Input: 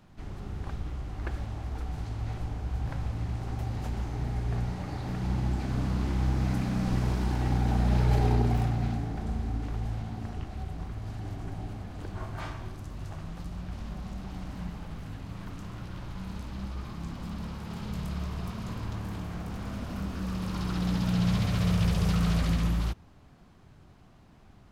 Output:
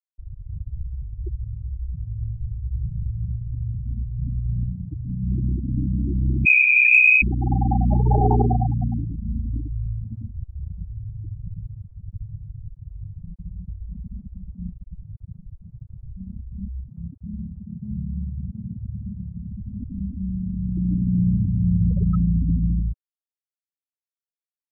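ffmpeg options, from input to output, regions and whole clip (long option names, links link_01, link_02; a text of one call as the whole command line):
ffmpeg -i in.wav -filter_complex "[0:a]asettb=1/sr,asplit=3[link_01][link_02][link_03];[link_01]atrim=end=6.454[link_04];[link_02]atrim=start=6.45:end=7.22,asetpts=PTS-STARTPTS,afade=type=in:duration=0.004:curve=qsin,afade=type=out:start_time=0.766:duration=0.004:curve=qsin,lowshelf=frequency=280:gain=4,lowpass=frequency=2200:width_type=q:width=0.5098,lowpass=frequency=2200:width_type=q:width=0.6013,lowpass=frequency=2200:width_type=q:width=0.9,lowpass=frequency=2200:width_type=q:width=2.563,afreqshift=-2600[link_05];[link_03]atrim=start=7.216[link_06];[link_04][link_05]acrossfade=duration=0.004:curve1=hsin:curve2=qsin[link_07];[link_07][link_06]acrossfade=duration=0.004:curve1=qsin:curve2=hsin,asettb=1/sr,asplit=3[link_08][link_09][link_10];[link_08]atrim=end=17.064[link_11];[link_09]atrim=start=17.06:end=19.39,asetpts=PTS-STARTPTS,afade=type=in:duration=0.004:curve=qsin,afade=type=out:start_time=2.326:duration=0.004:curve=qsin,highpass=53,asplit=2[link_12][link_13];[link_13]adelay=15,volume=-13.5dB[link_14];[link_12][link_14]amix=inputs=2:normalize=0,atrim=end_sample=102753,aecho=1:1:208|416|624|832:0.133|0.0613|0.0282|0.013,atrim=end_sample=102753[link_15];[link_10]atrim=start=19.386[link_16];[link_11][link_15]acrossfade=duration=0.004:curve1=hsin:curve2=qsin[link_17];[link_17][link_16]acrossfade=duration=0.004:curve1=qsin:curve2=hsin,afftfilt=real='re*gte(hypot(re,im),0.1)':imag='im*gte(hypot(re,im),0.1)':win_size=1024:overlap=0.75,acontrast=36,equalizer=frequency=1000:width=0.48:gain=9" out.wav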